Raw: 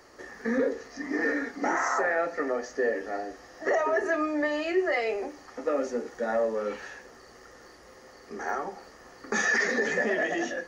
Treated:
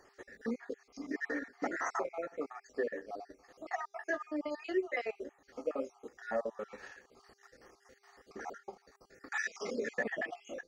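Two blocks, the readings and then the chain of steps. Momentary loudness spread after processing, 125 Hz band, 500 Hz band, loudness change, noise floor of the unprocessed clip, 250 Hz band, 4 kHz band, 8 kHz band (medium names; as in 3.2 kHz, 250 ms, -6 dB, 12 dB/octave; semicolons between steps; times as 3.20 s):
15 LU, no reading, -10.5 dB, -10.5 dB, -52 dBFS, -9.5 dB, -12.0 dB, -12.5 dB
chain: random holes in the spectrogram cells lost 44%; mains buzz 400 Hz, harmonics 7, -66 dBFS -9 dB/octave; transient shaper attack +2 dB, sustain -8 dB; trim -7.5 dB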